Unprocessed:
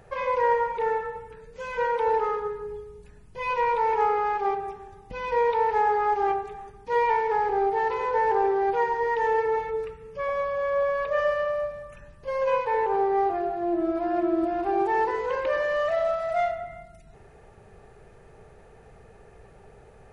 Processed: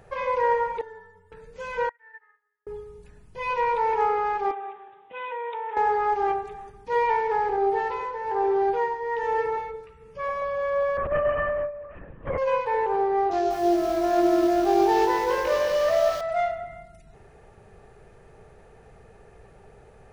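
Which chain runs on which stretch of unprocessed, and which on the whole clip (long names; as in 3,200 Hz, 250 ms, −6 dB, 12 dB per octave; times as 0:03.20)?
0:00.81–0:01.32: Butterworth band-reject 2,500 Hz, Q 4.5 + stiff-string resonator 87 Hz, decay 0.58 s, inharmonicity 0.03
0:01.89–0:02.67: resonant band-pass 1,800 Hz, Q 18 + expander for the loud parts 2.5 to 1, over −55 dBFS
0:04.51–0:05.77: high-pass filter 510 Hz + downward compressor, threshold −29 dBFS + bad sample-rate conversion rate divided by 6×, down none, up filtered
0:07.56–0:10.42: shaped tremolo triangle 1.2 Hz, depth 65% + double-tracking delay 15 ms −7 dB + flutter between parallel walls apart 9.5 metres, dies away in 0.21 s
0:10.97–0:12.38: low-pass filter 2,600 Hz 24 dB per octave + linear-prediction vocoder at 8 kHz whisper + low-shelf EQ 160 Hz +8.5 dB
0:13.31–0:16.21: variable-slope delta modulation 32 kbit/s + double-tracking delay 20 ms −3 dB + feedback echo at a low word length 195 ms, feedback 35%, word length 7 bits, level −5 dB
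whole clip: no processing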